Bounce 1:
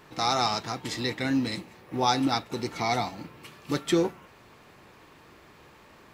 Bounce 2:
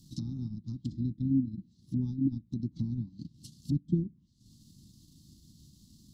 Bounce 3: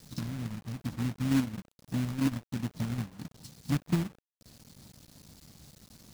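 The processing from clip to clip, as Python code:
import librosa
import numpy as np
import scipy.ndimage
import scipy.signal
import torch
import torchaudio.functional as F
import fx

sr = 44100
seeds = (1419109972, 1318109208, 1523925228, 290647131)

y1 = fx.transient(x, sr, attack_db=4, sustain_db=-11)
y1 = scipy.signal.sosfilt(scipy.signal.cheby2(4, 40, [430.0, 2500.0], 'bandstop', fs=sr, output='sos'), y1)
y1 = fx.env_lowpass_down(y1, sr, base_hz=540.0, full_db=-32.0)
y1 = y1 * 10.0 ** (3.5 / 20.0)
y2 = fx.quant_companded(y1, sr, bits=4)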